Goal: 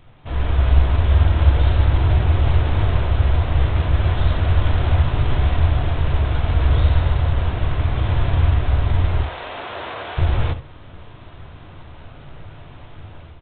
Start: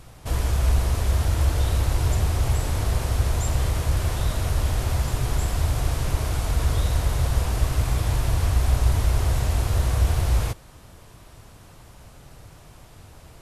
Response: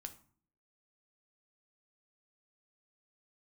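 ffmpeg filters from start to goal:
-filter_complex "[0:a]asplit=3[link_01][link_02][link_03];[link_01]afade=type=out:start_time=9.22:duration=0.02[link_04];[link_02]highpass=500,afade=type=in:start_time=9.22:duration=0.02,afade=type=out:start_time=10.17:duration=0.02[link_05];[link_03]afade=type=in:start_time=10.17:duration=0.02[link_06];[link_04][link_05][link_06]amix=inputs=3:normalize=0,dynaudnorm=framelen=240:gausssize=3:maxgain=10dB,asplit=2[link_07][link_08];[link_08]adelay=133,lowpass=frequency=1700:poles=1,volume=-22dB,asplit=2[link_09][link_10];[link_10]adelay=133,lowpass=frequency=1700:poles=1,volume=0.5,asplit=2[link_11][link_12];[link_12]adelay=133,lowpass=frequency=1700:poles=1,volume=0.5[link_13];[link_07][link_09][link_11][link_13]amix=inputs=4:normalize=0[link_14];[1:a]atrim=start_sample=2205,afade=type=out:start_time=0.14:duration=0.01,atrim=end_sample=6615[link_15];[link_14][link_15]afir=irnorm=-1:irlink=0,volume=1.5dB" -ar 8000 -c:a adpcm_g726 -b:a 24k

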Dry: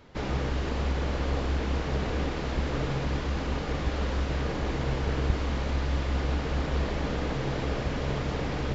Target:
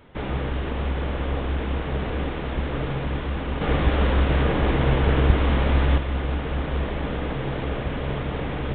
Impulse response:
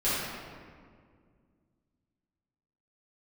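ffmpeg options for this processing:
-filter_complex "[0:a]asettb=1/sr,asplit=3[link_01][link_02][link_03];[link_01]atrim=end=3.614[link_04];[link_02]atrim=start=3.61:end=5.98,asetpts=PTS-STARTPTS,afade=type=in:duration=0.004:curve=qsin,afade=type=out:start_time=2.366:duration=0.004:curve=qsin,acontrast=64[link_05];[link_03]atrim=start=5.976[link_06];[link_04][link_05]acrossfade=duration=0.004:curve1=hsin:curve2=qsin[link_07];[link_07][link_06]acrossfade=duration=0.004:curve1=qsin:curve2=hsin,aresample=8000,aresample=44100,volume=2.5dB"

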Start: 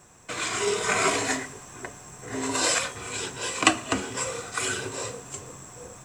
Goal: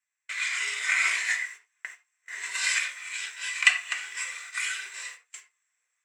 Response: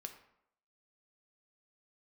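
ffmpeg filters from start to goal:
-filter_complex "[0:a]highpass=frequency=2000:width_type=q:width=4.4,agate=range=-27dB:threshold=-37dB:ratio=16:detection=peak[link_01];[1:a]atrim=start_sample=2205,atrim=end_sample=4410[link_02];[link_01][link_02]afir=irnorm=-1:irlink=0,volume=-1dB"

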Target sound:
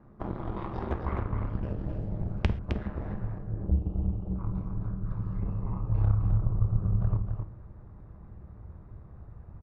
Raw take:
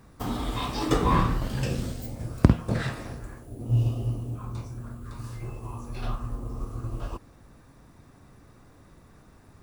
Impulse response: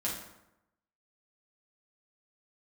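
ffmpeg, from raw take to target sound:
-filter_complex "[0:a]lowpass=1100,aeval=exprs='0.891*(cos(1*acos(clip(val(0)/0.891,-1,1)))-cos(1*PI/2))+0.251*(cos(8*acos(clip(val(0)/0.891,-1,1)))-cos(8*PI/2))':channel_layout=same,acompressor=threshold=-29dB:ratio=5,asubboost=boost=5:cutoff=70,aeval=exprs='val(0)*sin(2*PI*70*n/s)':channel_layout=same,aecho=1:1:262:0.501,asplit=2[link_01][link_02];[1:a]atrim=start_sample=2205,atrim=end_sample=6174[link_03];[link_02][link_03]afir=irnorm=-1:irlink=0,volume=-12.5dB[link_04];[link_01][link_04]amix=inputs=2:normalize=0"

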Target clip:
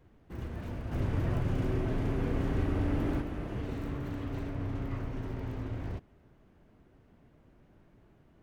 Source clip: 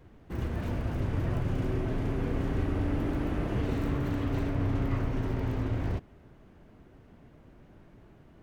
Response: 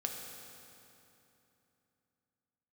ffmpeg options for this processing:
-filter_complex "[0:a]asplit=3[link_01][link_02][link_03];[link_01]afade=type=out:start_time=0.91:duration=0.02[link_04];[link_02]acontrast=50,afade=type=in:start_time=0.91:duration=0.02,afade=type=out:start_time=3.2:duration=0.02[link_05];[link_03]afade=type=in:start_time=3.2:duration=0.02[link_06];[link_04][link_05][link_06]amix=inputs=3:normalize=0,volume=-6.5dB"

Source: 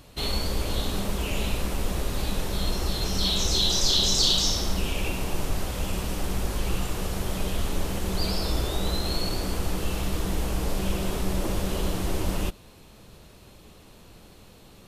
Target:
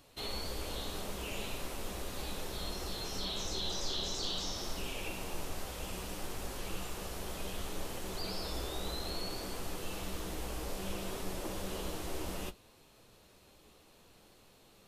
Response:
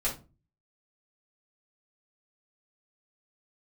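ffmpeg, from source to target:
-filter_complex "[0:a]flanger=delay=6.9:depth=7.3:regen=-55:speed=0.62:shape=triangular,acrossover=split=2600[link_01][link_02];[link_02]acompressor=threshold=-35dB:ratio=4:attack=1:release=60[link_03];[link_01][link_03]amix=inputs=2:normalize=0,bass=frequency=250:gain=-7,treble=frequency=4000:gain=1,asplit=2[link_04][link_05];[1:a]atrim=start_sample=2205[link_06];[link_05][link_06]afir=irnorm=-1:irlink=0,volume=-26.5dB[link_07];[link_04][link_07]amix=inputs=2:normalize=0,volume=-5dB"

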